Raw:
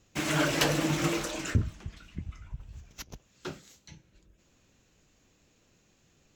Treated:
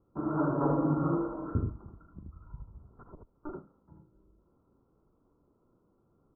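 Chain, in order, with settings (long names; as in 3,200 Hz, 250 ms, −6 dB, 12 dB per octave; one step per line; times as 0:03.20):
0:00.49–0:01.11: comb filter 7.3 ms, depth 71%
0:01.82–0:02.37: downward compressor 2.5 to 1, threshold −41 dBFS, peak gain reduction 7 dB
Chebyshev low-pass with heavy ripple 1,400 Hz, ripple 6 dB
ambience of single reflections 41 ms −10.5 dB, 77 ms −3.5 dB
0:02.93–0:03.54: one-pitch LPC vocoder at 8 kHz 300 Hz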